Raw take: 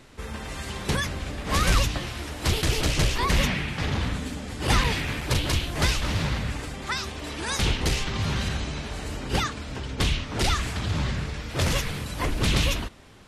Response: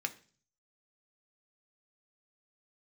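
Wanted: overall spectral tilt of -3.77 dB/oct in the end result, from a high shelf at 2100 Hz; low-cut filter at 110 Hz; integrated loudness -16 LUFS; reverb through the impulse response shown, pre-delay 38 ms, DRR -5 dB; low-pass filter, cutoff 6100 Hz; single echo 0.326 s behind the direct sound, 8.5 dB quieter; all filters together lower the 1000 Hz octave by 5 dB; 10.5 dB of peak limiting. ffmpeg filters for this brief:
-filter_complex "[0:a]highpass=110,lowpass=6.1k,equalizer=f=1k:t=o:g=-4.5,highshelf=f=2.1k:g=-7,alimiter=limit=-23dB:level=0:latency=1,aecho=1:1:326:0.376,asplit=2[a][b];[1:a]atrim=start_sample=2205,adelay=38[c];[b][c]afir=irnorm=-1:irlink=0,volume=2.5dB[d];[a][d]amix=inputs=2:normalize=0,volume=12.5dB"

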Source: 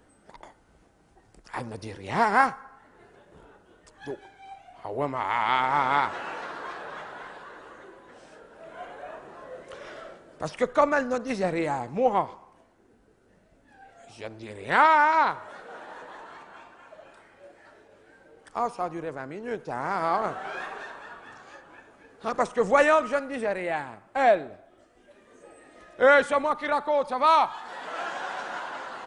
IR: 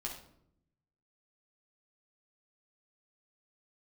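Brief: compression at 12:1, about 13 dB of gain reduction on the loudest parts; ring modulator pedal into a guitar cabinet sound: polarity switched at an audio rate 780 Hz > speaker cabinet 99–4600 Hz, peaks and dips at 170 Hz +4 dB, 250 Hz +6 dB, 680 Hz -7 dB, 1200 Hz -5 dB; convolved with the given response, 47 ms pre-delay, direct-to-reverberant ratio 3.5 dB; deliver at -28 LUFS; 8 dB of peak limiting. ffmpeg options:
-filter_complex "[0:a]acompressor=threshold=-27dB:ratio=12,alimiter=limit=-23.5dB:level=0:latency=1,asplit=2[a][b];[1:a]atrim=start_sample=2205,adelay=47[c];[b][c]afir=irnorm=-1:irlink=0,volume=-3dB[d];[a][d]amix=inputs=2:normalize=0,aeval=exprs='val(0)*sgn(sin(2*PI*780*n/s))':c=same,highpass=99,equalizer=f=170:t=q:w=4:g=4,equalizer=f=250:t=q:w=4:g=6,equalizer=f=680:t=q:w=4:g=-7,equalizer=f=1.2k:t=q:w=4:g=-5,lowpass=f=4.6k:w=0.5412,lowpass=f=4.6k:w=1.3066,volume=6.5dB"

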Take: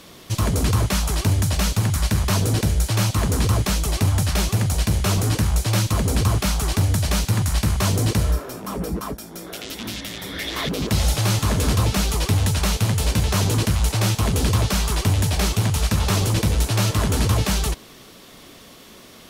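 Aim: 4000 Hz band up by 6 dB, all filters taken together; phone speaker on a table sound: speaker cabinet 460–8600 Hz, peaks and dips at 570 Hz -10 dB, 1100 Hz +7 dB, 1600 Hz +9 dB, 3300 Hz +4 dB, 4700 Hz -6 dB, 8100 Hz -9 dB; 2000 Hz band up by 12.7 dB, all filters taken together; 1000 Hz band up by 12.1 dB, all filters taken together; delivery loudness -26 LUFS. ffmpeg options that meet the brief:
-af "highpass=f=460:w=0.5412,highpass=f=460:w=1.3066,equalizer=f=570:t=q:w=4:g=-10,equalizer=f=1.1k:t=q:w=4:g=7,equalizer=f=1.6k:t=q:w=4:g=9,equalizer=f=3.3k:t=q:w=4:g=4,equalizer=f=4.7k:t=q:w=4:g=-6,equalizer=f=8.1k:t=q:w=4:g=-9,lowpass=f=8.6k:w=0.5412,lowpass=f=8.6k:w=1.3066,equalizer=f=1k:t=o:g=7,equalizer=f=2k:t=o:g=6,equalizer=f=4k:t=o:g=4.5,volume=-6.5dB"

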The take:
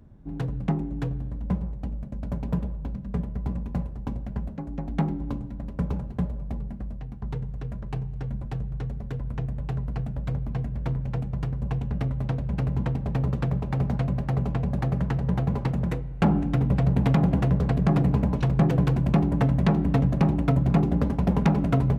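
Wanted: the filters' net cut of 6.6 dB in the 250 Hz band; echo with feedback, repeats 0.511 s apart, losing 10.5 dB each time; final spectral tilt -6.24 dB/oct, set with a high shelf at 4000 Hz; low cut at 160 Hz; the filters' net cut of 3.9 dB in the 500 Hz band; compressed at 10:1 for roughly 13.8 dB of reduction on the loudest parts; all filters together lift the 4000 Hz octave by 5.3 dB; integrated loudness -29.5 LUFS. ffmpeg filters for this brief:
-af "highpass=160,equalizer=f=250:t=o:g=-7,equalizer=f=500:t=o:g=-3,highshelf=f=4k:g=-3.5,equalizer=f=4k:t=o:g=9,acompressor=threshold=-36dB:ratio=10,aecho=1:1:511|1022|1533:0.299|0.0896|0.0269,volume=11.5dB"

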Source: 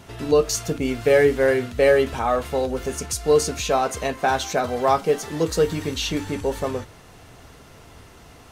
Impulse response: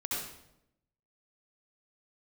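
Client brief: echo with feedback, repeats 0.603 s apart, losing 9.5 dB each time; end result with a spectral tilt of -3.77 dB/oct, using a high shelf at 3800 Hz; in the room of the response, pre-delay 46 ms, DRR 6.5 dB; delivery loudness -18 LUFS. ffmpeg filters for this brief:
-filter_complex "[0:a]highshelf=f=3.8k:g=3.5,aecho=1:1:603|1206|1809|2412:0.335|0.111|0.0365|0.012,asplit=2[a][b];[1:a]atrim=start_sample=2205,adelay=46[c];[b][c]afir=irnorm=-1:irlink=0,volume=-11dB[d];[a][d]amix=inputs=2:normalize=0,volume=2dB"

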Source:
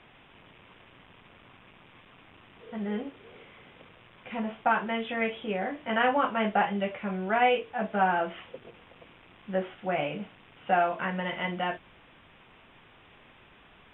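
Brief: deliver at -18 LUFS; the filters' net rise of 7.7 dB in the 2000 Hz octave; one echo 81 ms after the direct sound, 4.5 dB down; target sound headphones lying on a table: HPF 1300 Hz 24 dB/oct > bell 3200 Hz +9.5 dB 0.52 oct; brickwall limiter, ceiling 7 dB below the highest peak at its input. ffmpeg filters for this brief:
-af "equalizer=f=2k:t=o:g=8.5,alimiter=limit=-16dB:level=0:latency=1,highpass=f=1.3k:w=0.5412,highpass=f=1.3k:w=1.3066,equalizer=f=3.2k:t=o:w=0.52:g=9.5,aecho=1:1:81:0.596,volume=10dB"

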